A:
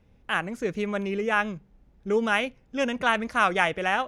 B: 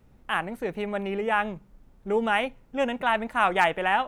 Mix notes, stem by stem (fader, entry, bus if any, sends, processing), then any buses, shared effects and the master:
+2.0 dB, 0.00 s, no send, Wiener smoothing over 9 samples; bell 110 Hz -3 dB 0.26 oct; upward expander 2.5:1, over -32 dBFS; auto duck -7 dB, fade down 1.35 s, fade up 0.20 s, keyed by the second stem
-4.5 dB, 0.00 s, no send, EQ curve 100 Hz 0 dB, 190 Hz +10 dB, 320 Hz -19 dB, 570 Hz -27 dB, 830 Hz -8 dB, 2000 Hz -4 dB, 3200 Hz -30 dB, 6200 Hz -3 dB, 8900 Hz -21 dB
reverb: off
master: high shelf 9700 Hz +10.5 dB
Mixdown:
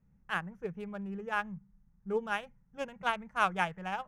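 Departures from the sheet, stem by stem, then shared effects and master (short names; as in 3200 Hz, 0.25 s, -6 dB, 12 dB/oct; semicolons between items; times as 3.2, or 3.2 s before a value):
stem B -4.5 dB -> -12.0 dB; master: missing high shelf 9700 Hz +10.5 dB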